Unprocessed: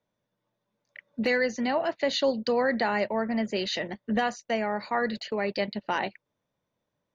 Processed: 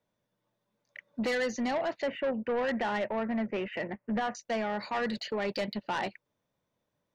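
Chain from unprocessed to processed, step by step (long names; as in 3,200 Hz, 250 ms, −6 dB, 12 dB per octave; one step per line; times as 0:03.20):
0:02.02–0:04.35: elliptic low-pass filter 2,600 Hz, stop band 40 dB
soft clipping −25.5 dBFS, distortion −11 dB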